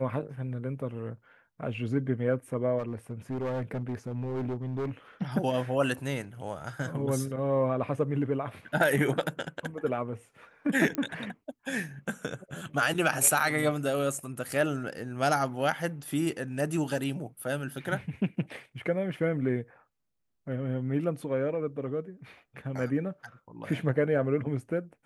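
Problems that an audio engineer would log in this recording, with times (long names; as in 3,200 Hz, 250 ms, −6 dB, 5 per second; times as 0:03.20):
0:02.78–0:04.91: clipping −28.5 dBFS
0:10.95: click −15 dBFS
0:13.40: drop-out 3.8 ms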